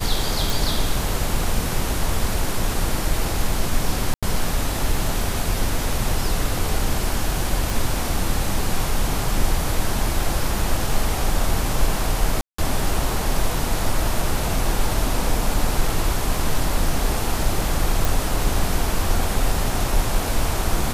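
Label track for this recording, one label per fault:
0.500000	0.500000	pop
4.140000	4.230000	dropout 86 ms
7.700000	7.700000	pop
12.410000	12.580000	dropout 174 ms
18.050000	18.050000	pop

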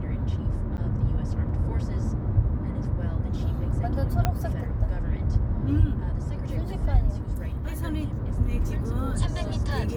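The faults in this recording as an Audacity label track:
0.770000	0.780000	dropout 9.4 ms
4.250000	4.250000	pop -9 dBFS

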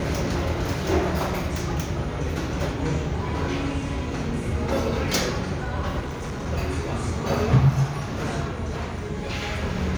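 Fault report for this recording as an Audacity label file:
5.990000	6.470000	clipped -27.5 dBFS

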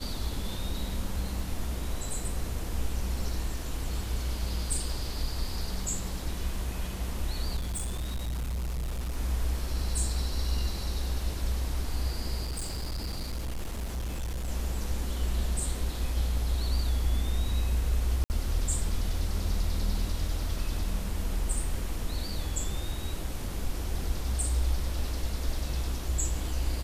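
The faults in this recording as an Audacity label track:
7.560000	9.170000	clipped -29 dBFS
12.430000	14.490000	clipped -29.5 dBFS
18.240000	18.300000	dropout 59 ms

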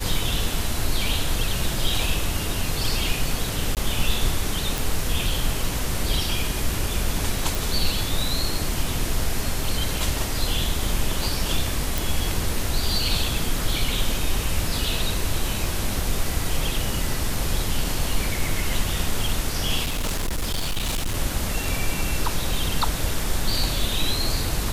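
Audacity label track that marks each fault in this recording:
3.750000	3.770000	dropout 18 ms
4.780000	4.780000	pop
7.550000	7.550000	pop
11.980000	11.980000	pop
19.840000	21.170000	clipped -21 dBFS

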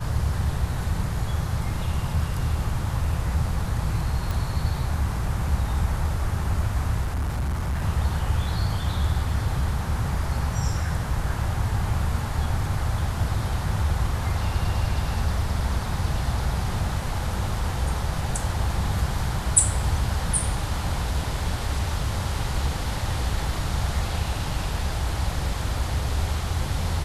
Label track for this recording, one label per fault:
4.310000	4.310000	pop
7.010000	7.850000	clipped -22.5 dBFS

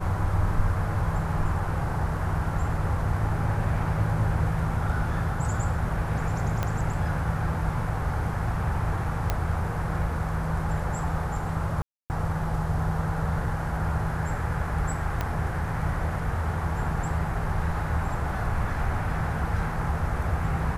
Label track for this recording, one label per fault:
6.630000	6.630000	pop -13 dBFS
9.300000	9.300000	pop -11 dBFS
11.820000	12.100000	dropout 279 ms
15.210000	15.210000	pop -14 dBFS

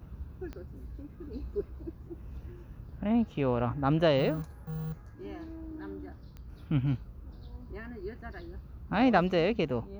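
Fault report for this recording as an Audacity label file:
0.530000	0.530000	pop -29 dBFS
6.370000	6.370000	pop -33 dBFS

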